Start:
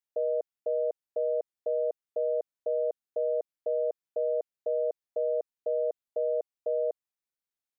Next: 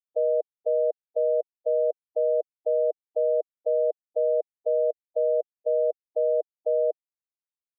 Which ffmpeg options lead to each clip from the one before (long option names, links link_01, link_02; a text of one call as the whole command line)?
ffmpeg -i in.wav -af "afftfilt=real='re*gte(hypot(re,im),0.112)':imag='im*gte(hypot(re,im),0.112)':win_size=1024:overlap=0.75,highpass=frequency=410:width=0.5412,highpass=frequency=410:width=1.3066,afftfilt=real='re*gte(hypot(re,im),0.0158)':imag='im*gte(hypot(re,im),0.0158)':win_size=1024:overlap=0.75,volume=6dB" out.wav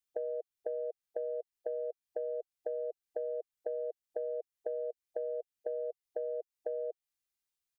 ffmpeg -i in.wav -af "acompressor=threshold=-31dB:ratio=6,equalizer=frequency=500:width=0.44:gain=-9.5,aecho=1:1:2.5:0.33,volume=6.5dB" out.wav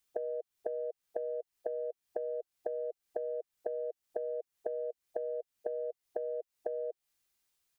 ffmpeg -i in.wav -af "acompressor=threshold=-44dB:ratio=6,volume=9.5dB" out.wav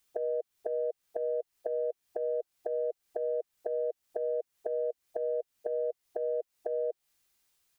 ffmpeg -i in.wav -af "alimiter=level_in=4dB:limit=-24dB:level=0:latency=1:release=60,volume=-4dB,volume=5.5dB" out.wav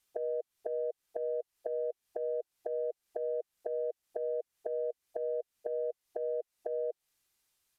ffmpeg -i in.wav -af "aresample=32000,aresample=44100,volume=-2.5dB" out.wav